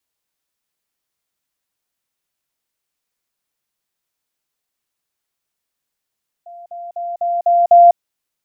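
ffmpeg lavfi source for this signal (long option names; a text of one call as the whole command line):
ffmpeg -f lavfi -i "aevalsrc='pow(10,(-33.5+6*floor(t/0.25))/20)*sin(2*PI*693*t)*clip(min(mod(t,0.25),0.2-mod(t,0.25))/0.005,0,1)':duration=1.5:sample_rate=44100" out.wav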